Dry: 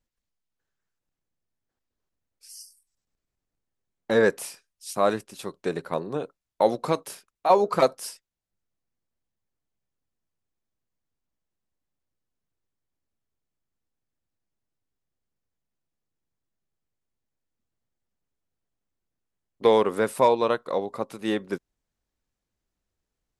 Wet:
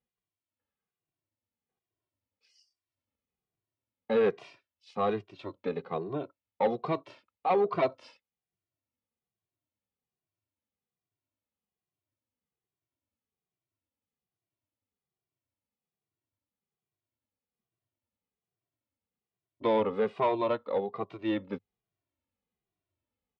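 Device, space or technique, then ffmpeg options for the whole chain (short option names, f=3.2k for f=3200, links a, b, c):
barber-pole flanger into a guitar amplifier: -filter_complex "[0:a]asplit=2[a][b];[b]adelay=2,afreqshift=-1.2[c];[a][c]amix=inputs=2:normalize=1,asoftclip=type=tanh:threshold=-19dB,highpass=94,equalizer=f=100:t=q:w=4:g=7,equalizer=f=160:t=q:w=4:g=-3,equalizer=f=1.6k:t=q:w=4:g=-8,lowpass=f=3.4k:w=0.5412,lowpass=f=3.4k:w=1.3066"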